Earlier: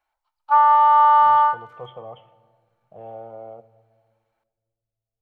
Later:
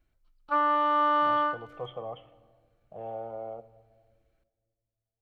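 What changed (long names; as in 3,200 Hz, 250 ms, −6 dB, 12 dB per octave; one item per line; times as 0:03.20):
background: remove high-pass with resonance 870 Hz, resonance Q 7.6
master: add low-shelf EQ 74 Hz −5.5 dB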